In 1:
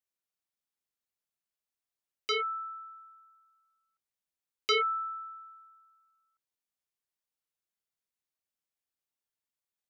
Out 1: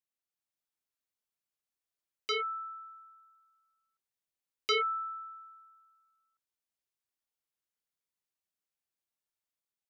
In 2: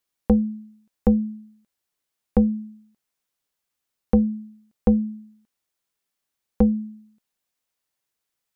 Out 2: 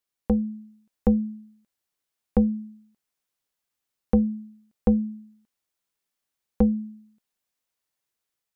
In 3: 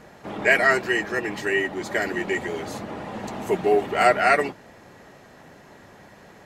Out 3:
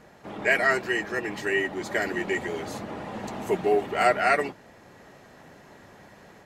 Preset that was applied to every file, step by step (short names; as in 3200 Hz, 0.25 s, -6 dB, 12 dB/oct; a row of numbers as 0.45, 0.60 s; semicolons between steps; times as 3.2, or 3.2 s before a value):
AGC gain up to 3 dB; gain -5 dB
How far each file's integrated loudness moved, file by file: -2.0, -2.5, -3.5 LU